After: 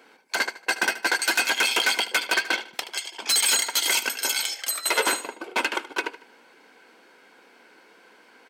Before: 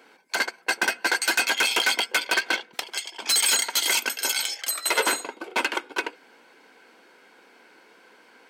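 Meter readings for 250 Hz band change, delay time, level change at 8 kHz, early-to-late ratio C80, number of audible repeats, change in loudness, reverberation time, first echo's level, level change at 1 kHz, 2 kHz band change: 0.0 dB, 76 ms, 0.0 dB, no reverb audible, 3, 0.0 dB, no reverb audible, −15.0 dB, 0.0 dB, 0.0 dB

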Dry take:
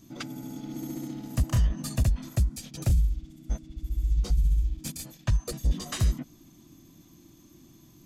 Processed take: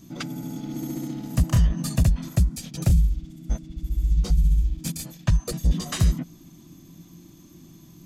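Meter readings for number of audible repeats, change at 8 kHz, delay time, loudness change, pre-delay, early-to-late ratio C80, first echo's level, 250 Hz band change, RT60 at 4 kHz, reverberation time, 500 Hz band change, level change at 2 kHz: no echo audible, +4.0 dB, no echo audible, +4.5 dB, no reverb audible, no reverb audible, no echo audible, +6.5 dB, no reverb audible, no reverb audible, +4.0 dB, +4.0 dB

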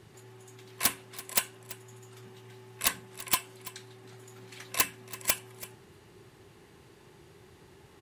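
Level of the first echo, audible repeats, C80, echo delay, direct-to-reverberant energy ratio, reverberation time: −17.0 dB, 1, no reverb audible, 334 ms, no reverb audible, no reverb audible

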